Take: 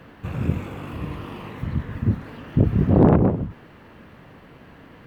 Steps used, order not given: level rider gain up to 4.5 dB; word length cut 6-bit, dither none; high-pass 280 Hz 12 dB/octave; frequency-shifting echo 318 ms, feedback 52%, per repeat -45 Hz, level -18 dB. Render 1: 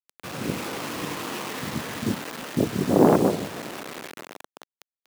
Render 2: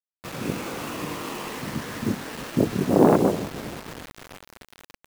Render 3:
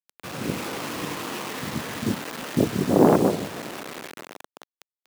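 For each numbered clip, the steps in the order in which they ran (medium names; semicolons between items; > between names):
frequency-shifting echo > word length cut > level rider > high-pass; high-pass > frequency-shifting echo > level rider > word length cut; frequency-shifting echo > word length cut > high-pass > level rider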